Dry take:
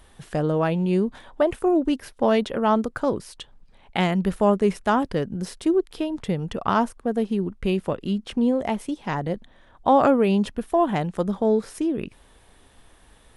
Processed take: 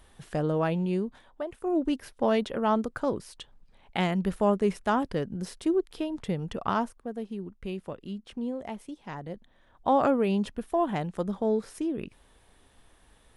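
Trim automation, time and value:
0.78 s -4.5 dB
1.53 s -15.5 dB
1.78 s -5 dB
6.66 s -5 dB
7.13 s -12 dB
9.25 s -12 dB
9.89 s -6 dB

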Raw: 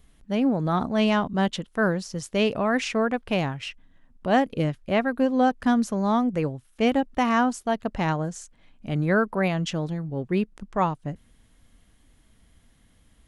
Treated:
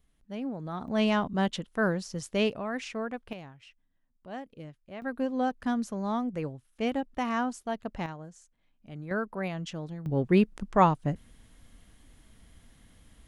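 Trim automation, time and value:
-12.5 dB
from 0.88 s -4 dB
from 2.50 s -10.5 dB
from 3.33 s -19.5 dB
from 5.02 s -8 dB
from 8.06 s -16 dB
from 9.11 s -9.5 dB
from 10.06 s +2.5 dB

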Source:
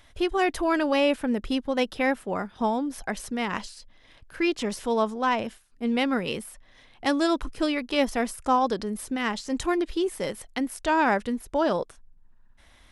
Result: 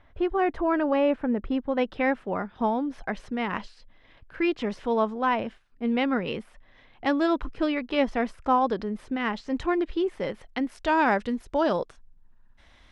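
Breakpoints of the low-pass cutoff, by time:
1.53 s 1.6 kHz
2.05 s 2.8 kHz
10.37 s 2.8 kHz
11.05 s 5.5 kHz

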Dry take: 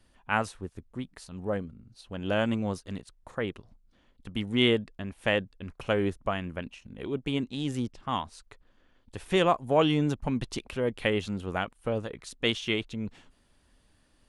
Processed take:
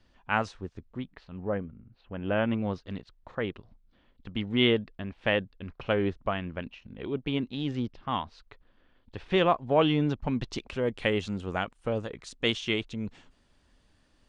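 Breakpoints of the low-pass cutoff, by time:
low-pass 24 dB/octave
0.70 s 6.1 kHz
1.43 s 2.6 kHz
2.34 s 2.6 kHz
2.83 s 4.5 kHz
10.01 s 4.5 kHz
10.87 s 7.9 kHz

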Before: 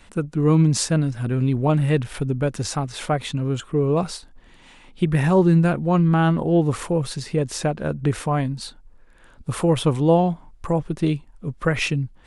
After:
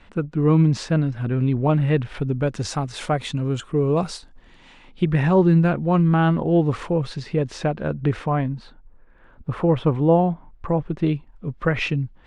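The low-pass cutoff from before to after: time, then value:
2.09 s 3.3 kHz
2.86 s 8.4 kHz
4.13 s 8.4 kHz
5.21 s 3.9 kHz
8.01 s 3.9 kHz
8.63 s 1.9 kHz
10.15 s 1.9 kHz
11.46 s 3.5 kHz

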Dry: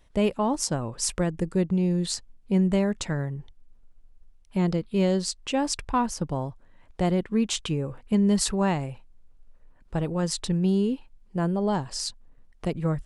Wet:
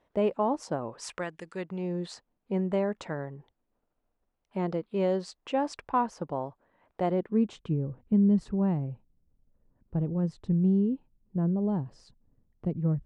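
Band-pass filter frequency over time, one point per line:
band-pass filter, Q 0.7
0.85 s 610 Hz
1.43 s 2.6 kHz
1.95 s 700 Hz
7.05 s 700 Hz
7.79 s 150 Hz

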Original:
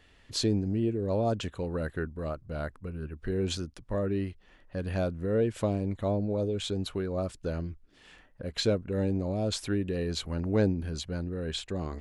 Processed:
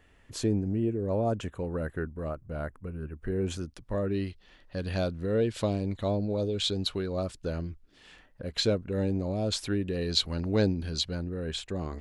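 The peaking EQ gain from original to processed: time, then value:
peaking EQ 4.2 kHz 1 oct
-10 dB
from 3.61 s +1.5 dB
from 4.14 s +9.5 dB
from 7.23 s +3 dB
from 10.02 s +11 dB
from 11.15 s -0.5 dB

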